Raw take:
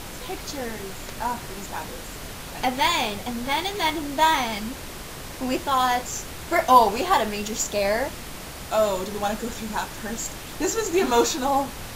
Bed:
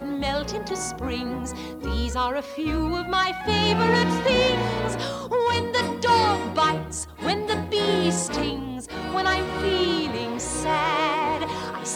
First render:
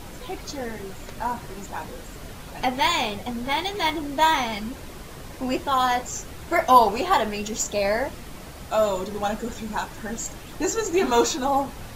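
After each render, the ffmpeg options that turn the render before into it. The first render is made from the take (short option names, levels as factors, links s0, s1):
-af "afftdn=nr=7:nf=-37"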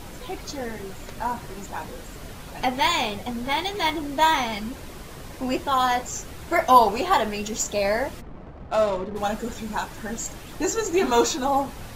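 -filter_complex "[0:a]asplit=3[s0][s1][s2];[s0]afade=t=out:st=8.2:d=0.02[s3];[s1]adynamicsmooth=sensitivity=3.5:basefreq=840,afade=t=in:st=8.2:d=0.02,afade=t=out:st=9.15:d=0.02[s4];[s2]afade=t=in:st=9.15:d=0.02[s5];[s3][s4][s5]amix=inputs=3:normalize=0"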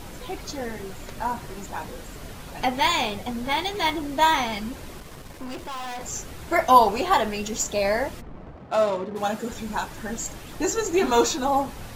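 -filter_complex "[0:a]asettb=1/sr,asplit=3[s0][s1][s2];[s0]atrim=end=5.004[s3];[s1]atrim=start=5:end=6.01,asetpts=PTS-STARTPTS,afade=t=in:d=0.004:c=qsin,afade=t=out:st=1.006:d=0.004:c=qsin,aeval=exprs='(tanh(39.8*val(0)+0.55)-tanh(0.55))/39.8':c=same[s4];[s2]atrim=start=6.006[s5];[s3][s4]acrossfade=d=0.004:c1=hsin:c2=qsin[s6];[s6][s5]acrossfade=d=0.004:c1=qsin:c2=hsin,asettb=1/sr,asplit=3[s7][s8][s9];[s7]atrim=end=8.574[s10];[s8]atrim=start=8.57:end=9.51,asetpts=PTS-STARTPTS,afade=t=in:d=0.004:c=qsin,afade=t=out:st=0.936:d=0.004:c=qsin,highpass=120[s11];[s9]atrim=start=9.506[s12];[s10][s11]acrossfade=d=0.004:c1=hsin:c2=qsin[s13];[s13][s12]acrossfade=d=0.004:c1=qsin:c2=hsin"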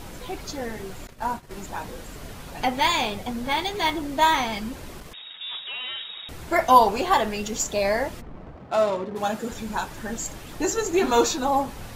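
-filter_complex "[0:a]asettb=1/sr,asplit=3[s0][s1][s2];[s0]atrim=end=1.074[s3];[s1]atrim=start=1.07:end=1.51,asetpts=PTS-STARTPTS,afade=t=in:d=0.004:c=qsin,afade=t=out:st=0.436:d=0.004:c=qsin,agate=range=0.0224:threshold=0.0316:ratio=3:release=100:detection=peak[s4];[s2]atrim=start=1.506[s5];[s3][s4]acrossfade=d=0.004:c1=hsin:c2=qsin[s6];[s6][s5]acrossfade=d=0.004:c1=qsin:c2=hsin,asettb=1/sr,asplit=3[s7][s8][s9];[s7]atrim=end=5.134[s10];[s8]atrim=start=5.13:end=6.29,asetpts=PTS-STARTPTS,afade=t=in:d=0.004:c=qsin,afade=t=out:st=1.156:d=0.004:c=qsin,lowpass=f=3200:t=q:w=0.5098,lowpass=f=3200:t=q:w=0.6013,lowpass=f=3200:t=q:w=0.9,lowpass=f=3200:t=q:w=2.563,afreqshift=-3800[s11];[s9]atrim=start=6.286[s12];[s10][s11]acrossfade=d=0.004:c1=hsin:c2=qsin[s13];[s13][s12]acrossfade=d=0.004:c1=qsin:c2=hsin"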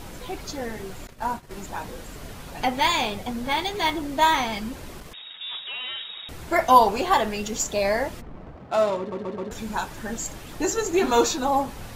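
-filter_complex "[0:a]asplit=5[s0][s1][s2][s3][s4];[s0]atrim=end=9.122[s5];[s1]atrim=start=8.988:end=9.122[s6];[s2]atrim=start=8.988:end=9.122[s7];[s3]atrim=start=8.988:end=9.122[s8];[s4]atrim=start=9.508[s9];[s5][s6]acrossfade=d=0.004:c1=hsin:c2=hsin[s10];[s10][s7]acrossfade=d=0.004:c1=hsin:c2=hsin[s11];[s11][s8]acrossfade=d=0.004:c1=hsin:c2=hsin[s12];[s12][s9]acrossfade=d=0.004:c1=hsin:c2=hsin"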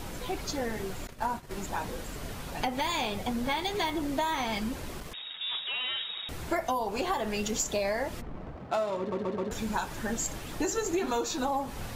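-filter_complex "[0:a]acrossover=split=680|7000[s0][s1][s2];[s1]alimiter=limit=0.15:level=0:latency=1:release=132[s3];[s0][s3][s2]amix=inputs=3:normalize=0,acompressor=threshold=0.0501:ratio=12"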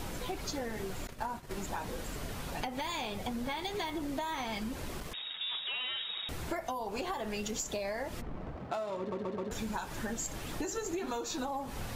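-af "acompressor=threshold=0.02:ratio=4"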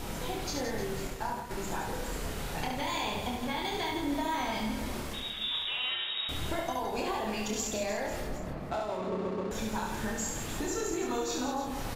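-filter_complex "[0:a]asplit=2[s0][s1];[s1]adelay=28,volume=0.631[s2];[s0][s2]amix=inputs=2:normalize=0,aecho=1:1:70|168|305.2|497.3|766.2:0.631|0.398|0.251|0.158|0.1"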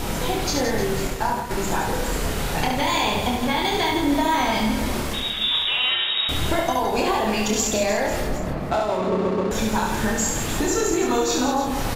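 -af "volume=3.76"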